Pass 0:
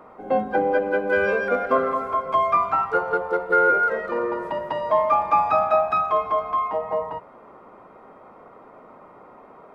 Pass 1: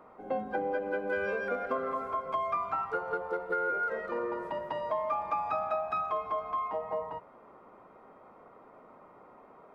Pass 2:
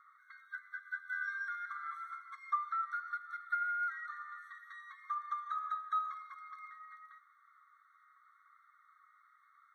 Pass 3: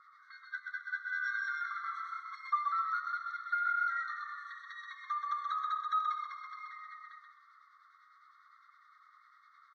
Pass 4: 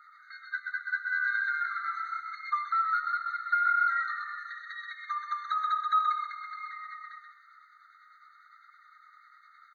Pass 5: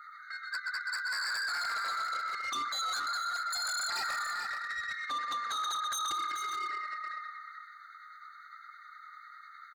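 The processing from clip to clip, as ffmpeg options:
-af "acompressor=threshold=-20dB:ratio=5,volume=-8dB"
-af "asubboost=boost=11:cutoff=230,flanger=delay=1.4:depth=3.4:regen=70:speed=0.93:shape=sinusoidal,afftfilt=real='re*eq(mod(floor(b*sr/1024/1100),2),1)':imag='im*eq(mod(floor(b*sr/1024/1100),2),1)':win_size=1024:overlap=0.75,volume=4dB"
-filter_complex "[0:a]acrossover=split=1300[a][b];[a]aeval=exprs='val(0)*(1-0.7/2+0.7/2*cos(2*PI*9.9*n/s))':c=same[c];[b]aeval=exprs='val(0)*(1-0.7/2-0.7/2*cos(2*PI*9.9*n/s))':c=same[d];[c][d]amix=inputs=2:normalize=0,lowpass=f=4.8k:t=q:w=6.1,asplit=2[e][f];[f]asplit=4[g][h][i][j];[g]adelay=129,afreqshift=-32,volume=-4dB[k];[h]adelay=258,afreqshift=-64,volume=-13.6dB[l];[i]adelay=387,afreqshift=-96,volume=-23.3dB[m];[j]adelay=516,afreqshift=-128,volume=-32.9dB[n];[k][l][m][n]amix=inputs=4:normalize=0[o];[e][o]amix=inputs=2:normalize=0,volume=5dB"
-af "afftfilt=real='re*eq(mod(floor(b*sr/1024/1200),2),1)':imag='im*eq(mod(floor(b*sr/1024/1200),2),1)':win_size=1024:overlap=0.75,volume=6.5dB"
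-af "aeval=exprs='0.0282*(abs(mod(val(0)/0.0282+3,4)-2)-1)':c=same,aecho=1:1:434:0.335,asoftclip=type=tanh:threshold=-37dB,volume=6dB"

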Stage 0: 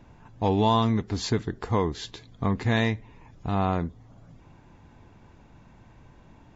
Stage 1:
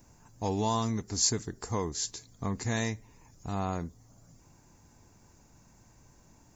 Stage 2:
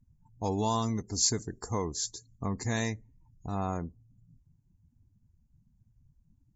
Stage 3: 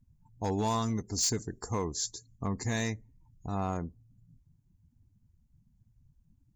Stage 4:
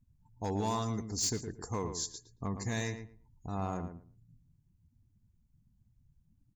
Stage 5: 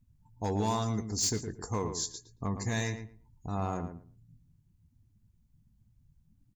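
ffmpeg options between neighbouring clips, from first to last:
-af "aexciter=amount=14.2:drive=2.9:freq=5.1k,volume=-7.5dB"
-af "afftdn=nr=32:nf=-47"
-af "volume=24dB,asoftclip=hard,volume=-24dB"
-filter_complex "[0:a]asplit=2[a][b];[b]adelay=113,lowpass=f=2k:p=1,volume=-8dB,asplit=2[c][d];[d]adelay=113,lowpass=f=2k:p=1,volume=0.19,asplit=2[e][f];[f]adelay=113,lowpass=f=2k:p=1,volume=0.19[g];[a][c][e][g]amix=inputs=4:normalize=0,volume=-3.5dB"
-filter_complex "[0:a]asplit=2[a][b];[b]adelay=19,volume=-13.5dB[c];[a][c]amix=inputs=2:normalize=0,volume=2.5dB"

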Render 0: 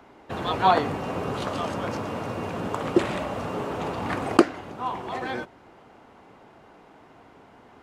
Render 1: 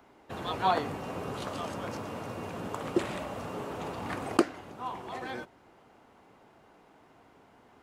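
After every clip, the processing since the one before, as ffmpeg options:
-af "highshelf=f=7.3k:g=8.5,volume=-7.5dB"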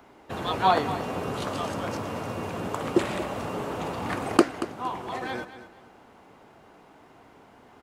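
-af "aecho=1:1:231|462|693:0.224|0.0582|0.0151,volume=5.5dB"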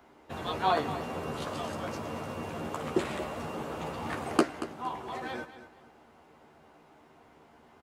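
-filter_complex "[0:a]asplit=2[a][b];[b]adelay=13,volume=-5dB[c];[a][c]amix=inputs=2:normalize=0,volume=-6dB"

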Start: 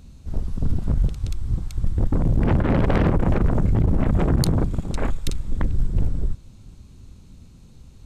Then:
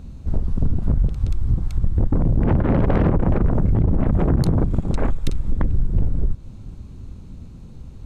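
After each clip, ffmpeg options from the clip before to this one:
-af "highshelf=f=2.2k:g=-12,acompressor=threshold=-23dB:ratio=3,volume=8dB"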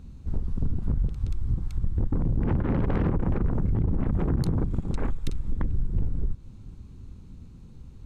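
-af "equalizer=f=630:t=o:w=0.48:g=-6.5,volume=-7dB"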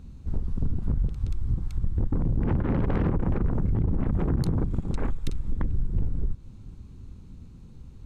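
-af anull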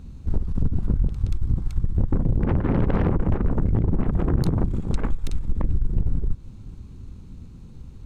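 -af "aeval=exprs='(tanh(8.91*val(0)+0.6)-tanh(0.6))/8.91':c=same,volume=7dB"

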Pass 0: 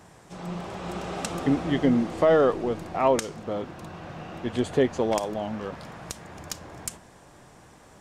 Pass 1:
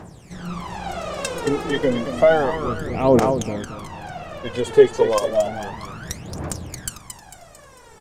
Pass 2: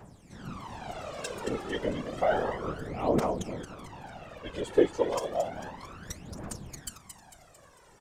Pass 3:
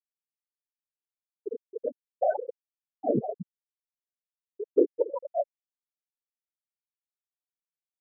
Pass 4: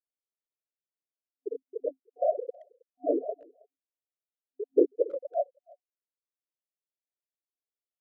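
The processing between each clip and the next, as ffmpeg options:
-af "aecho=1:1:224|448|672|896|1120|1344:0.398|0.191|0.0917|0.044|0.0211|0.0101,aphaser=in_gain=1:out_gain=1:delay=2.4:decay=0.77:speed=0.31:type=triangular,volume=1.5dB"
-af "afftfilt=real='hypot(re,im)*cos(2*PI*random(0))':imag='hypot(re,im)*sin(2*PI*random(1))':win_size=512:overlap=0.75,volume=-4.5dB"
-filter_complex "[0:a]afftfilt=real='re*gte(hypot(re,im),0.224)':imag='im*gte(hypot(re,im),0.224)':win_size=1024:overlap=0.75,asplit=2[a][b];[b]acompressor=threshold=-33dB:ratio=6,volume=1.5dB[c];[a][c]amix=inputs=2:normalize=0,volume=-1.5dB"
-filter_complex "[0:a]afftfilt=real='re*between(b*sr/4096,260,730)':imag='im*between(b*sr/4096,260,730)':win_size=4096:overlap=0.75,asplit=2[a][b];[b]adelay=320,highpass=300,lowpass=3.4k,asoftclip=type=hard:threshold=-17.5dB,volume=-26dB[c];[a][c]amix=inputs=2:normalize=0"

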